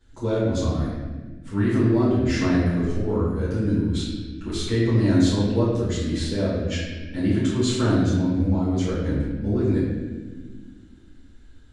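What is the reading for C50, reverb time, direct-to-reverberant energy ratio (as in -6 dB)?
-1.0 dB, 1.4 s, -12.0 dB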